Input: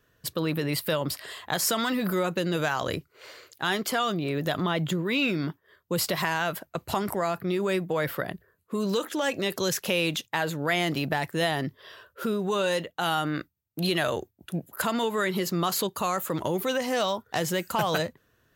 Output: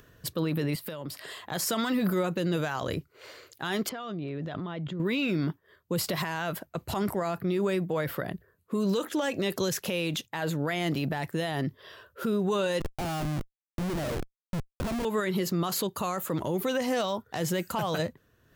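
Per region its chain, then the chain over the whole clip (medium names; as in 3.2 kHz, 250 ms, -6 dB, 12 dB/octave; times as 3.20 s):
0.75–1.51 s: high-pass 110 Hz + compression 12:1, threshold -33 dBFS
3.89–5.00 s: level held to a coarse grid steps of 12 dB + distance through air 160 m
12.80–15.05 s: companding laws mixed up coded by A + low-pass 1.2 kHz 24 dB/octave + Schmitt trigger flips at -34 dBFS
whole clip: bass shelf 450 Hz +5.5 dB; upward compressor, threshold -46 dBFS; peak limiter -18 dBFS; trim -2 dB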